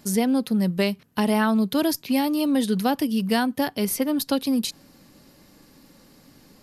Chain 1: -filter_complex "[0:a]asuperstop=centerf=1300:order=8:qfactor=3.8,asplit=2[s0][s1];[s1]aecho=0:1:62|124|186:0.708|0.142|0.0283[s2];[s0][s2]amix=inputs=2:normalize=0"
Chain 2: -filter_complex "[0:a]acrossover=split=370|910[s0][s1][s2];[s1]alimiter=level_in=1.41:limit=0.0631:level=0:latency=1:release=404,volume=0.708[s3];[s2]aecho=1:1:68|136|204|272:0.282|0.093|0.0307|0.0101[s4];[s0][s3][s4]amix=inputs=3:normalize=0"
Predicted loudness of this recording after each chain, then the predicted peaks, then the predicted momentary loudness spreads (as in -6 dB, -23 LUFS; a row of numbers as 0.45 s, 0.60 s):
-21.5 LUFS, -24.0 LUFS; -6.5 dBFS, -11.5 dBFS; 4 LU, 4 LU